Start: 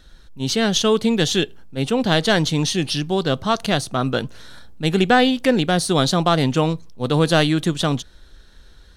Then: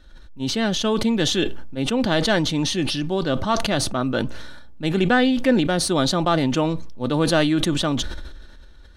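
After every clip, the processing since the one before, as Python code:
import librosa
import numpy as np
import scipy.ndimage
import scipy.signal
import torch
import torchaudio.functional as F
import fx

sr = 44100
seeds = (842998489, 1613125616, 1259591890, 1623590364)

y = fx.high_shelf(x, sr, hz=4100.0, db=-9.0)
y = y + 0.35 * np.pad(y, (int(3.4 * sr / 1000.0), 0))[:len(y)]
y = fx.sustainer(y, sr, db_per_s=37.0)
y = y * librosa.db_to_amplitude(-2.5)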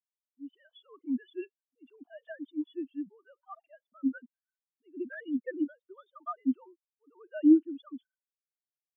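y = fx.sine_speech(x, sr)
y = fx.peak_eq(y, sr, hz=450.0, db=-10.5, octaves=1.2)
y = fx.spectral_expand(y, sr, expansion=2.5)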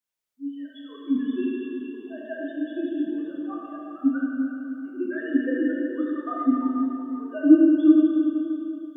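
y = fx.echo_feedback(x, sr, ms=377, feedback_pct=30, wet_db=-11.0)
y = fx.rev_plate(y, sr, seeds[0], rt60_s=2.9, hf_ratio=0.9, predelay_ms=0, drr_db=-5.0)
y = y * librosa.db_to_amplitude(4.5)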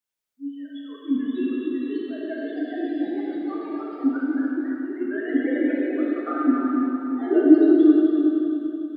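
y = fx.echo_pitch(x, sr, ms=677, semitones=2, count=3, db_per_echo=-6.0)
y = fx.echo_feedback(y, sr, ms=285, feedback_pct=46, wet_db=-7)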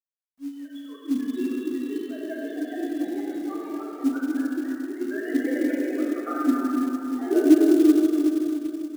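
y = fx.quant_companded(x, sr, bits=6)
y = y * librosa.db_to_amplitude(-2.0)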